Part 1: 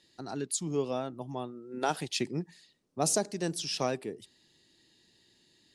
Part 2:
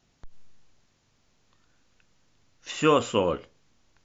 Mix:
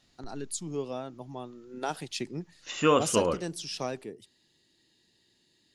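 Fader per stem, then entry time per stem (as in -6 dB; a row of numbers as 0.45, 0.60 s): -3.0, -2.0 dB; 0.00, 0.00 s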